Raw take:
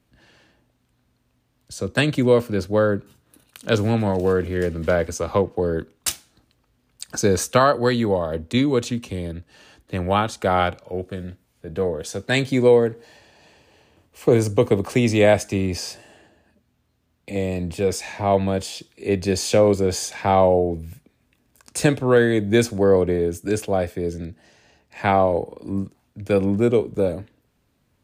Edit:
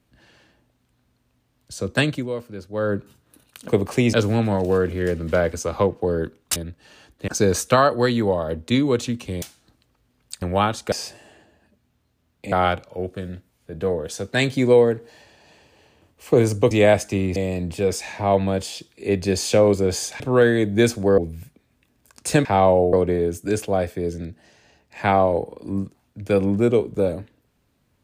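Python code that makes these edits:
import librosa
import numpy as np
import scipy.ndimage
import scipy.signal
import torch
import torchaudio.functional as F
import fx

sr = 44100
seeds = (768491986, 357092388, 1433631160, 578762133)

y = fx.edit(x, sr, fx.fade_down_up(start_s=2.02, length_s=0.95, db=-12.0, fade_s=0.25),
    fx.swap(start_s=6.11, length_s=1.0, other_s=9.25, other_length_s=0.72),
    fx.move(start_s=14.66, length_s=0.45, to_s=3.68),
    fx.move(start_s=15.76, length_s=1.6, to_s=10.47),
    fx.swap(start_s=20.2, length_s=0.48, other_s=21.95, other_length_s=0.98), tone=tone)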